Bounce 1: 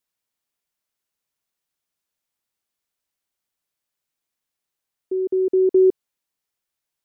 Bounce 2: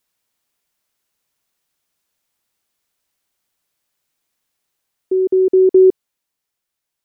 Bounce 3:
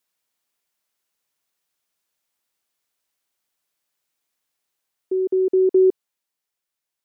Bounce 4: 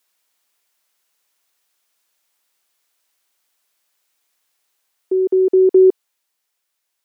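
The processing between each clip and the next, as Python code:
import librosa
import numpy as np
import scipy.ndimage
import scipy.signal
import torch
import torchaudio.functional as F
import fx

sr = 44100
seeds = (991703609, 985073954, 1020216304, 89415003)

y1 = fx.rider(x, sr, range_db=10, speed_s=2.0)
y1 = F.gain(torch.from_numpy(y1), 6.5).numpy()
y2 = fx.low_shelf(y1, sr, hz=200.0, db=-7.5)
y2 = F.gain(torch.from_numpy(y2), -4.0).numpy()
y3 = fx.highpass(y2, sr, hz=480.0, slope=6)
y3 = F.gain(torch.from_numpy(y3), 9.0).numpy()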